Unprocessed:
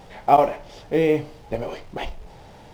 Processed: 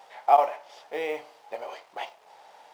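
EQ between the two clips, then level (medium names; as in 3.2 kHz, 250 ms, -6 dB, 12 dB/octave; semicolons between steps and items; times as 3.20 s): resonant high-pass 780 Hz, resonance Q 1.5; -5.5 dB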